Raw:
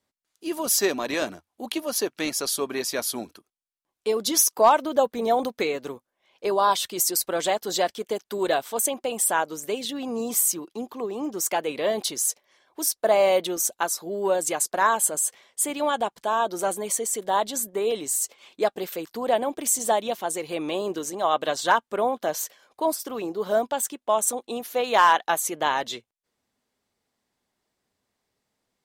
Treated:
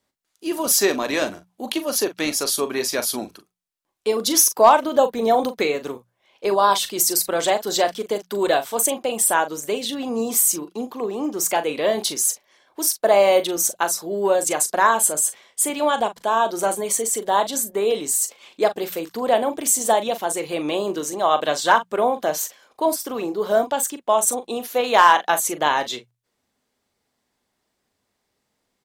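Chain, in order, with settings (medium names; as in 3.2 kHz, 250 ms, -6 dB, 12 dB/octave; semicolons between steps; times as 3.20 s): hum notches 60/120/180 Hz; doubling 40 ms -11 dB; trim +4 dB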